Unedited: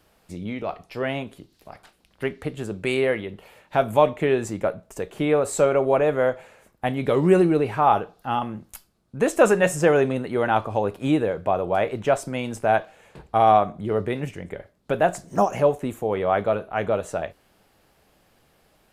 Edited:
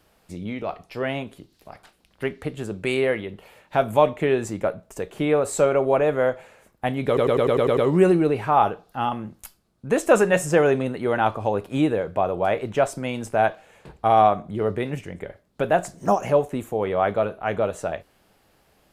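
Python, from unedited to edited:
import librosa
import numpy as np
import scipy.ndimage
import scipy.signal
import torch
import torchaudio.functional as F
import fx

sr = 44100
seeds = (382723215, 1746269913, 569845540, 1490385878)

y = fx.edit(x, sr, fx.stutter(start_s=7.07, slice_s=0.1, count=8), tone=tone)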